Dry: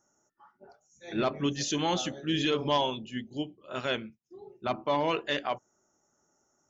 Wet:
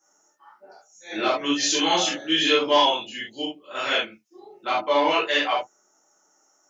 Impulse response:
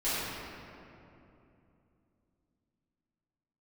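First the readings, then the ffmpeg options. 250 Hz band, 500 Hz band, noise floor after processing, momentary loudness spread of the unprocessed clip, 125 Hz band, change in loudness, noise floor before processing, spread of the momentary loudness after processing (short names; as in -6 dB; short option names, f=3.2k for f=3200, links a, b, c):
+3.5 dB, +7.0 dB, -65 dBFS, 10 LU, -10.0 dB, +8.5 dB, -74 dBFS, 14 LU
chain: -filter_complex "[0:a]highpass=f=930:p=1[a];[1:a]atrim=start_sample=2205,atrim=end_sample=3969[b];[a][b]afir=irnorm=-1:irlink=0,volume=6dB"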